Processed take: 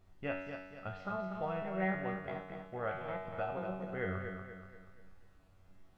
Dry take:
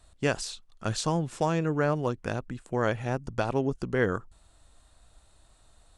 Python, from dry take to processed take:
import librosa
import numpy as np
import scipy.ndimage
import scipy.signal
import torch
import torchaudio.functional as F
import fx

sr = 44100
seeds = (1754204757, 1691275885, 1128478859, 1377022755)

p1 = fx.pitch_trill(x, sr, semitones=4.5, every_ms=324)
p2 = scipy.signal.sosfilt(scipy.signal.butter(4, 2800.0, 'lowpass', fs=sr, output='sos'), p1)
p3 = fx.low_shelf(p2, sr, hz=180.0, db=-4.0)
p4 = p3 + 0.44 * np.pad(p3, (int(1.5 * sr / 1000.0), 0))[:len(p3)]
p5 = fx.dmg_noise_colour(p4, sr, seeds[0], colour='brown', level_db=-51.0)
p6 = fx.comb_fb(p5, sr, f0_hz=94.0, decay_s=0.91, harmonics='all', damping=0.0, mix_pct=90)
p7 = p6 + fx.echo_feedback(p6, sr, ms=240, feedback_pct=43, wet_db=-7.0, dry=0)
y = p7 * 10.0 ** (2.5 / 20.0)